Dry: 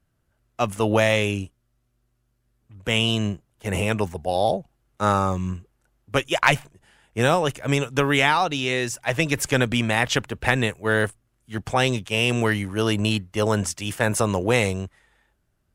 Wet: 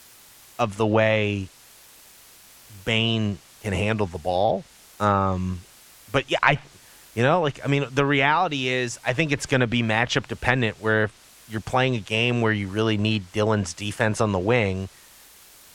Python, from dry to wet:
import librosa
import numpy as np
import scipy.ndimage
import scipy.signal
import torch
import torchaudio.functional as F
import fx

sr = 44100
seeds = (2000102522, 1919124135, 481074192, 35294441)

y = fx.quant_dither(x, sr, seeds[0], bits=8, dither='triangular')
y = fx.env_lowpass_down(y, sr, base_hz=2800.0, full_db=-15.0)